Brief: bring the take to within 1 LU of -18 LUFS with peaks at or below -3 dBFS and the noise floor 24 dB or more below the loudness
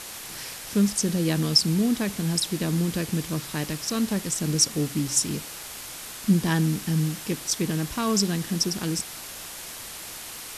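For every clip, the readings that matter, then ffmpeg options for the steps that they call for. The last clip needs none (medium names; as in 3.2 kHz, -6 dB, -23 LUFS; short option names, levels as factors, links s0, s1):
noise floor -39 dBFS; noise floor target -50 dBFS; loudness -25.5 LUFS; peak level -7.0 dBFS; loudness target -18.0 LUFS
-> -af "afftdn=nr=11:nf=-39"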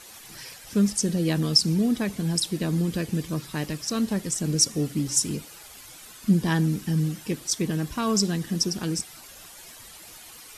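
noise floor -46 dBFS; noise floor target -49 dBFS
-> -af "afftdn=nr=6:nf=-46"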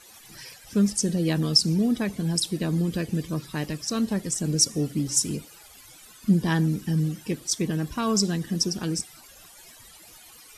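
noise floor -50 dBFS; loudness -25.0 LUFS; peak level -7.0 dBFS; loudness target -18.0 LUFS
-> -af "volume=2.24,alimiter=limit=0.708:level=0:latency=1"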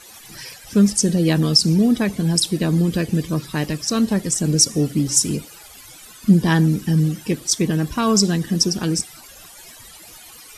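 loudness -18.5 LUFS; peak level -3.0 dBFS; noise floor -43 dBFS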